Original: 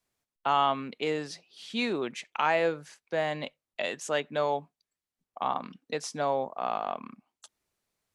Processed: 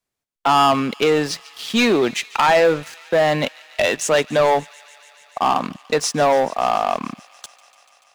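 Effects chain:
leveller curve on the samples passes 3
delay with a high-pass on its return 145 ms, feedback 83%, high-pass 1,900 Hz, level −19.5 dB
level +4.5 dB

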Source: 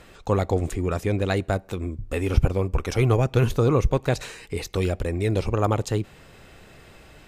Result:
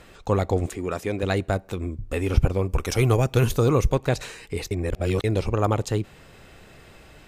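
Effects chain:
0:00.66–0:01.23: high-pass filter 250 Hz 6 dB per octave
0:02.69–0:03.95: high-shelf EQ 5,700 Hz +10.5 dB
0:04.71–0:05.24: reverse

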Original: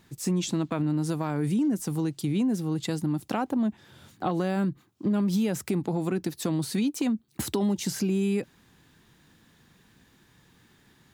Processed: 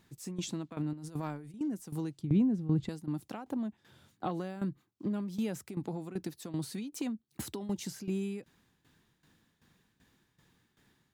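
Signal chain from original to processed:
0:00.93–0:01.61: compressor whose output falls as the input rises −30 dBFS, ratio −0.5
0:02.19–0:02.89: RIAA equalisation playback
shaped tremolo saw down 2.6 Hz, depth 80%
level −6 dB

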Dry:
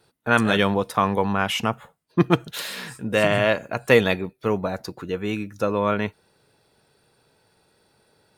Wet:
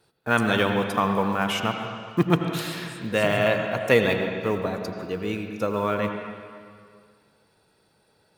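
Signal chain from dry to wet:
one scale factor per block 7 bits
on a send: convolution reverb RT60 2.0 s, pre-delay 73 ms, DRR 4.5 dB
on the sum: level −3 dB

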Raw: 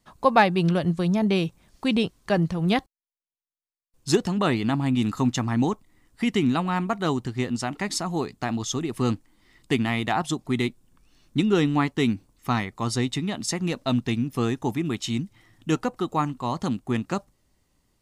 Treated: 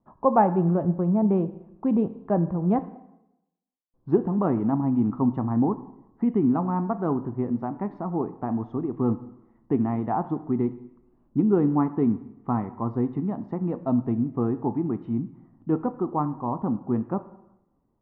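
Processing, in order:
transistor ladder low-pass 1,200 Hz, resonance 40%
parametric band 250 Hz +9 dB 2.4 octaves
dense smooth reverb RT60 0.87 s, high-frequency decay 0.9×, DRR 11 dB

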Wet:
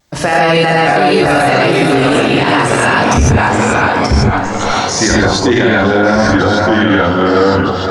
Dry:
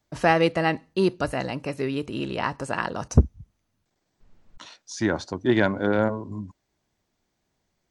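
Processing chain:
tilt shelving filter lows −3 dB, about 1,100 Hz
hum removal 104.9 Hz, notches 3
delay with pitch and tempo change per echo 552 ms, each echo −2 semitones, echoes 3, each echo −6 dB
pitch vibrato 0.32 Hz 10 cents
on a send: feedback echo with a band-pass in the loop 512 ms, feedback 47%, band-pass 990 Hz, level −8 dB
on the sum: reverb whose tail is shaped and stops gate 180 ms rising, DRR −7.5 dB
boost into a limiter +16 dB
level −1 dB

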